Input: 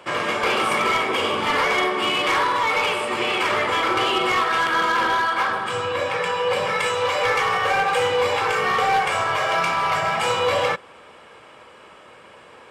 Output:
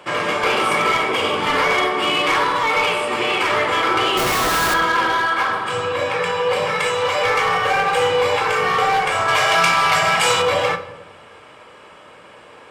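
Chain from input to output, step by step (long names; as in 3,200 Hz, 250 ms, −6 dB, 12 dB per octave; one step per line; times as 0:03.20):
0:04.17–0:04.74: comparator with hysteresis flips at −27 dBFS
0:09.28–0:10.42: high-shelf EQ 2,000 Hz +9.5 dB
rectangular room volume 390 cubic metres, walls mixed, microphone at 0.43 metres
level +2 dB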